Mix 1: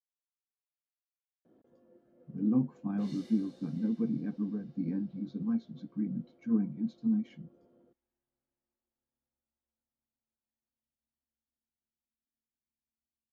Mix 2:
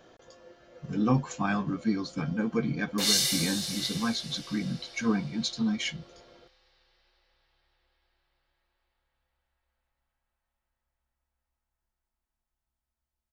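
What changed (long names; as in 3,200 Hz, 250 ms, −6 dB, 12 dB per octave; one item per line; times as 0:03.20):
speech: entry −1.45 s
master: remove resonant band-pass 240 Hz, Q 2.3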